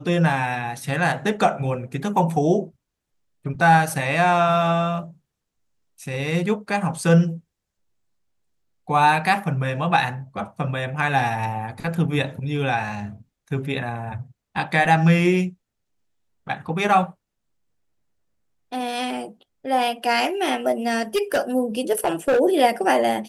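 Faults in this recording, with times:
20.89–21.38 clipped -16 dBFS
21.99–22.4 clipped -15 dBFS

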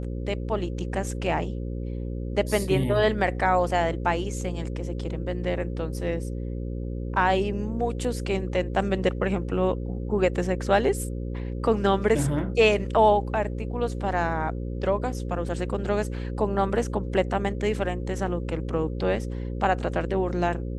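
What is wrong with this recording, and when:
buzz 60 Hz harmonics 9 -31 dBFS

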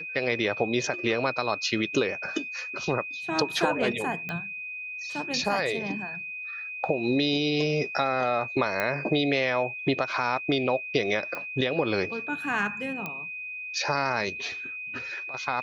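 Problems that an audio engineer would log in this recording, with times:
tone 2500 Hz -34 dBFS
4.29 pop -19 dBFS
8.8 pop -13 dBFS
11.35 pop -20 dBFS
13.06 pop -18 dBFS

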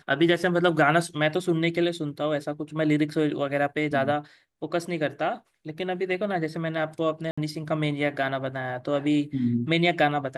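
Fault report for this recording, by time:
7.31–7.38 gap 65 ms

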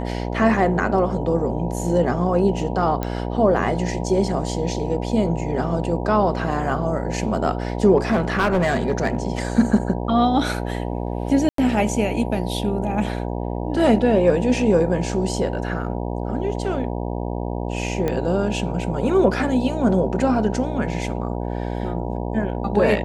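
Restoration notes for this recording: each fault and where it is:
buzz 60 Hz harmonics 16 -26 dBFS
3.03 pop -11 dBFS
7.97–9.25 clipped -14 dBFS
11.49–11.58 gap 93 ms
18.08 pop -11 dBFS

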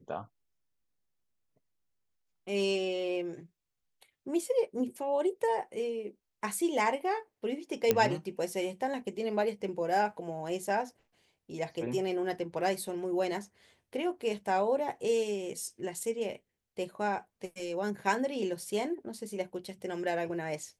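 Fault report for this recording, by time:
7.91 pop -10 dBFS

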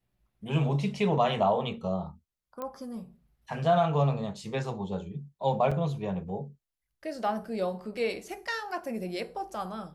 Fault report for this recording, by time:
2.62 pop -23 dBFS
5.71–5.72 gap 5.6 ms

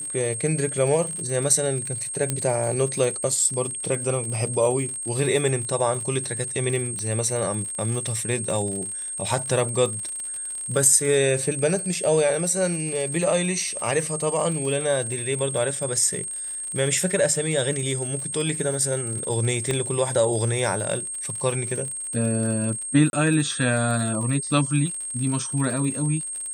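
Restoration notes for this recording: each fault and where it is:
crackle 69/s -30 dBFS
tone 8500 Hz -29 dBFS
2.3 pop -9 dBFS
6.99 pop -17 dBFS
19.71 pop -12 dBFS
23.1–23.13 gap 31 ms

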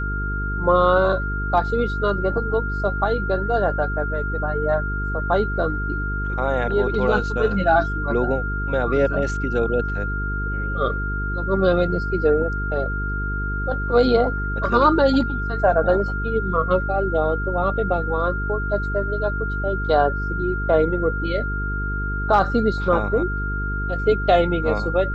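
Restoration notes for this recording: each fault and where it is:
buzz 50 Hz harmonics 9 -26 dBFS
tone 1400 Hz -27 dBFS

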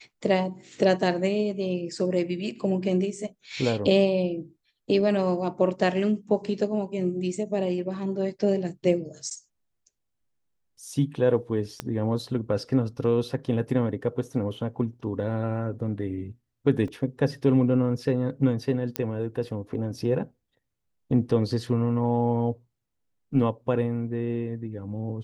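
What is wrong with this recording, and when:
11.8 pop -15 dBFS
16.88 gap 2.1 ms
18.96 pop -10 dBFS

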